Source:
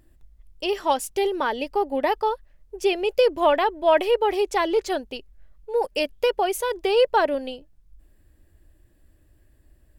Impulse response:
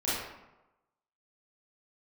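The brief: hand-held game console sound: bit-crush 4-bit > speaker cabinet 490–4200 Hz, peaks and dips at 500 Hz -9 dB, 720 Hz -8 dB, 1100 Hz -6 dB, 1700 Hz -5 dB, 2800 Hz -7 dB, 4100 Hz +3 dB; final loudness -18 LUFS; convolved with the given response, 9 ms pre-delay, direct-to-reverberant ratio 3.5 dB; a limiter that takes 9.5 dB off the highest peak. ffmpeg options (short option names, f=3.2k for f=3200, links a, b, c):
-filter_complex "[0:a]alimiter=limit=-16.5dB:level=0:latency=1,asplit=2[a][b];[1:a]atrim=start_sample=2205,adelay=9[c];[b][c]afir=irnorm=-1:irlink=0,volume=-12.5dB[d];[a][d]amix=inputs=2:normalize=0,acrusher=bits=3:mix=0:aa=0.000001,highpass=490,equalizer=f=500:t=q:w=4:g=-9,equalizer=f=720:t=q:w=4:g=-8,equalizer=f=1.1k:t=q:w=4:g=-6,equalizer=f=1.7k:t=q:w=4:g=-5,equalizer=f=2.8k:t=q:w=4:g=-7,equalizer=f=4.1k:t=q:w=4:g=3,lowpass=f=4.2k:w=0.5412,lowpass=f=4.2k:w=1.3066,volume=12dB"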